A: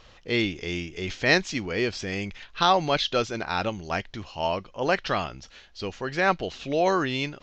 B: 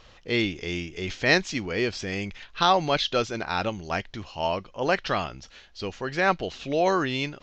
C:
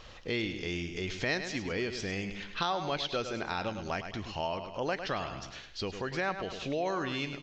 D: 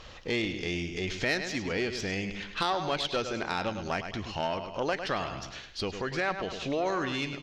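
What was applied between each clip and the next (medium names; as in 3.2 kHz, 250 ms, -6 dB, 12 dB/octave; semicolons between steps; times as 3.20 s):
no audible change
feedback delay 104 ms, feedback 36%, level -10.5 dB; compression 2.5:1, threshold -37 dBFS, peak gain reduction 14.5 dB; trim +2 dB
valve stage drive 22 dB, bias 0.5; trim +5 dB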